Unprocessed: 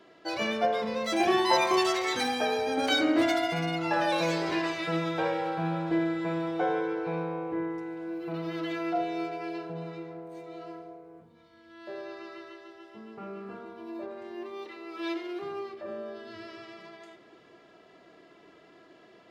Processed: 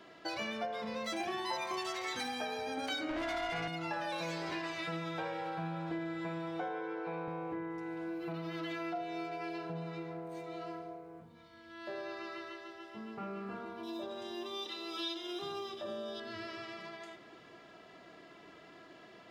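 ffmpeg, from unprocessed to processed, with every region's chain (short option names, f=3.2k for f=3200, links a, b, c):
-filter_complex "[0:a]asettb=1/sr,asplit=3[a][b][c];[a]atrim=end=3.094[d];[b]atrim=start=3.09:end=3.68,asetpts=PTS-STARTPTS,afade=t=in:d=0.004:c=qsin,afade=t=out:st=0.586:d=0.004:c=qsin,tremolo=f=280:d=0.519,asplit=2[e][f];[f]highpass=f=720:p=1,volume=21dB,asoftclip=type=tanh:threshold=-15.5dB[g];[e][g]amix=inputs=2:normalize=0,lowpass=f=2k:p=1,volume=-6dB[h];[c]atrim=start=3.676[i];[d][h]acrossfade=d=0.004:c1=hsin:c2=qsin[j];[j][i]acrossfade=d=0.004:c1=qsin:c2=hsin,asettb=1/sr,asplit=3[k][l][m];[k]atrim=end=6.684[n];[l]atrim=start=6.68:end=7.28,asetpts=PTS-STARTPTS,afade=t=in:d=0.004:c=qsin,afade=t=out:st=0.596:d=0.004:c=qsin,highpass=230,aemphasis=mode=reproduction:type=50fm[o];[m]atrim=start=7.276[p];[n][o]acrossfade=d=0.004:c1=hsin:c2=qsin[q];[q][p]acrossfade=d=0.004:c1=qsin:c2=hsin,asettb=1/sr,asplit=3[r][s][t];[r]atrim=end=13.834[u];[s]atrim=start=13.83:end=16.2,asetpts=PTS-STARTPTS,afade=t=in:d=0.004:c=qsin,afade=t=out:st=2.366:d=0.004:c=qsin,asuperstop=centerf=4400:order=20:qfactor=7.9,highshelf=f=2.8k:t=q:w=3:g=8[v];[t]atrim=start=16.196[w];[u][v]acrossfade=d=0.004:c1=hsin:c2=qsin[x];[x][w]acrossfade=d=0.004:c1=qsin:c2=hsin,equalizer=f=410:t=o:w=1.1:g=-5,acompressor=threshold=-40dB:ratio=4,volume=2.5dB"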